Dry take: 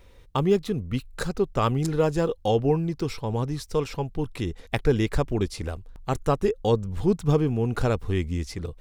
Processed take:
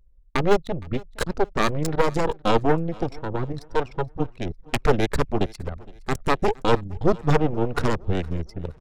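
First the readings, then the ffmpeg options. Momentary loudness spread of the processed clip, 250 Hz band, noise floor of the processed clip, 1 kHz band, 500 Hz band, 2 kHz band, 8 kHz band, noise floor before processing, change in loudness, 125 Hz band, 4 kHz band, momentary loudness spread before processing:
9 LU, 0.0 dB, −51 dBFS, +5.0 dB, +1.0 dB, +6.5 dB, +1.5 dB, −50 dBFS, +1.0 dB, −1.5 dB, +3.0 dB, 8 LU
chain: -af "aeval=exprs='0.422*(cos(1*acos(clip(val(0)/0.422,-1,1)))-cos(1*PI/2))+0.133*(cos(6*acos(clip(val(0)/0.422,-1,1)))-cos(6*PI/2))':channel_layout=same,anlmdn=10,aecho=1:1:465|930|1395:0.0668|0.0267|0.0107"

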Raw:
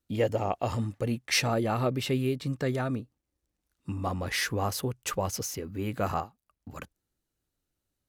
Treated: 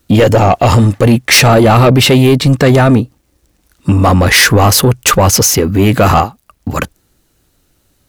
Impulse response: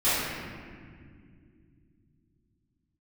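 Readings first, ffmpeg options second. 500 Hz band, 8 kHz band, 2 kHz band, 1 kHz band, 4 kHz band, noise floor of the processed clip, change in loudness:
+20.0 dB, +23.0 dB, +21.5 dB, +21.0 dB, +21.5 dB, −58 dBFS, +21.5 dB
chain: -af "apsyclip=26.5dB,asoftclip=type=tanh:threshold=-1.5dB"

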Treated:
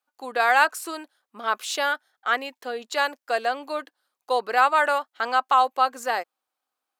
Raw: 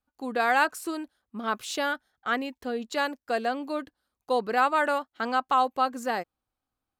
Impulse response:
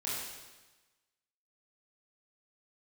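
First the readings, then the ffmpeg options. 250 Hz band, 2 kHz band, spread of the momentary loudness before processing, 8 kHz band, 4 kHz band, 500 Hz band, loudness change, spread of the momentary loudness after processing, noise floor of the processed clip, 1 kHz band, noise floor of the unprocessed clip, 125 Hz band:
−7.5 dB, +5.0 dB, 11 LU, +5.0 dB, +5.0 dB, +2.0 dB, +4.0 dB, 14 LU, below −85 dBFS, +4.5 dB, below −85 dBFS, can't be measured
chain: -af "highpass=560,volume=5dB"

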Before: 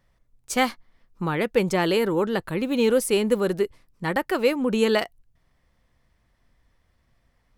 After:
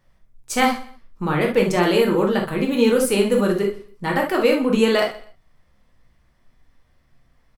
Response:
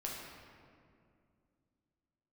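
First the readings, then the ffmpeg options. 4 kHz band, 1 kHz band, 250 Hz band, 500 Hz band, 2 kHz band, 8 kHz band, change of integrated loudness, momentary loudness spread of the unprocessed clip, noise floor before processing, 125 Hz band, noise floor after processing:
+3.5 dB, +5.0 dB, +5.0 dB, +4.0 dB, +4.0 dB, +3.0 dB, +4.0 dB, 7 LU, −68 dBFS, +4.5 dB, −61 dBFS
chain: -filter_complex "[0:a]aecho=1:1:123|246:0.126|0.0315[link_01];[1:a]atrim=start_sample=2205,atrim=end_sample=3528[link_02];[link_01][link_02]afir=irnorm=-1:irlink=0,volume=5.5dB"

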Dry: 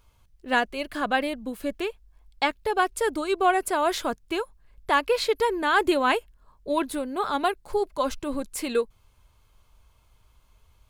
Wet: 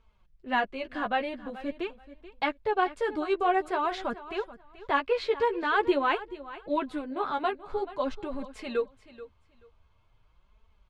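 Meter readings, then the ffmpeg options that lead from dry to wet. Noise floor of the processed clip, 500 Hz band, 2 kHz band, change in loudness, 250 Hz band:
−65 dBFS, −3.5 dB, −5.0 dB, −4.0 dB, −4.0 dB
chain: -filter_complex "[0:a]lowpass=3200,flanger=delay=4.5:depth=8.6:regen=3:speed=0.47:shape=sinusoidal,asplit=2[link_01][link_02];[link_02]aecho=0:1:432|864:0.158|0.0301[link_03];[link_01][link_03]amix=inputs=2:normalize=0,volume=-1dB"

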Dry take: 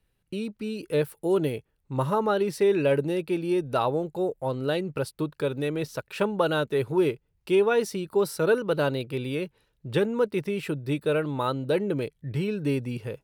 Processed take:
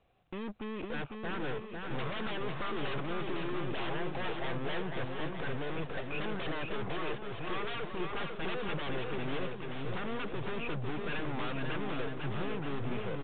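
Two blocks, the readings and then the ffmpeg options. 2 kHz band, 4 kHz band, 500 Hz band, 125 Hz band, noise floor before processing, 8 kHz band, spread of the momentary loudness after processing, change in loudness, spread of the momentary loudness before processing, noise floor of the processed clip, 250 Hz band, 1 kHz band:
−4.0 dB, −4.0 dB, −14.0 dB, −8.5 dB, −73 dBFS, below −35 dB, 3 LU, −10.5 dB, 9 LU, −43 dBFS, −10.5 dB, −7.0 dB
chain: -filter_complex "[0:a]asplit=3[link_01][link_02][link_03];[link_01]bandpass=frequency=730:width_type=q:width=8,volume=0dB[link_04];[link_02]bandpass=frequency=1090:width_type=q:width=8,volume=-6dB[link_05];[link_03]bandpass=frequency=2440:width_type=q:width=8,volume=-9dB[link_06];[link_04][link_05][link_06]amix=inputs=3:normalize=0,aemphasis=mode=reproduction:type=riaa,asplit=2[link_07][link_08];[link_08]aeval=exprs='0.0944*sin(PI/2*7.94*val(0)/0.0944)':channel_layout=same,volume=-3dB[link_09];[link_07][link_09]amix=inputs=2:normalize=0,aeval=exprs='(tanh(100*val(0)+0.8)-tanh(0.8))/100':channel_layout=same,asplit=2[link_10][link_11];[link_11]aecho=0:1:500|925|1286|1593|1854:0.631|0.398|0.251|0.158|0.1[link_12];[link_10][link_12]amix=inputs=2:normalize=0,volume=2.5dB" -ar 8000 -c:a pcm_mulaw

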